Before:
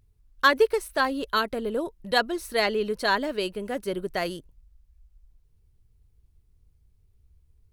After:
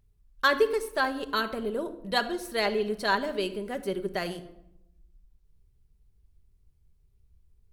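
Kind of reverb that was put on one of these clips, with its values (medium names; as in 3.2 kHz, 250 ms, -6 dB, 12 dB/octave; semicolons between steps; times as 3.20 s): simulated room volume 2500 m³, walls furnished, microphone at 1.2 m; trim -3.5 dB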